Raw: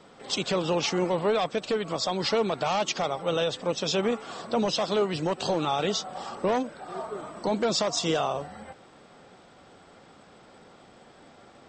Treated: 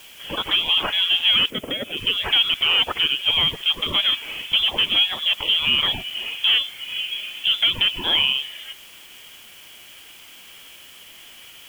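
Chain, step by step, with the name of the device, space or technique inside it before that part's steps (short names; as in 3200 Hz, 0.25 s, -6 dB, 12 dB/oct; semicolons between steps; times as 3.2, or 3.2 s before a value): scrambled radio voice (BPF 390–2800 Hz; inverted band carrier 3700 Hz; white noise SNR 25 dB); 1.5–1.97 ten-band EQ 125 Hz +8 dB, 250 Hz +11 dB, 500 Hz +12 dB, 1000 Hz -10 dB, 4000 Hz -11 dB; gain +8.5 dB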